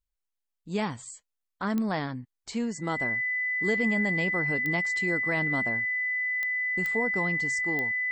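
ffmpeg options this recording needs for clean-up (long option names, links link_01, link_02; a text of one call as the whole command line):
ffmpeg -i in.wav -af "adeclick=threshold=4,bandreject=frequency=2000:width=30" out.wav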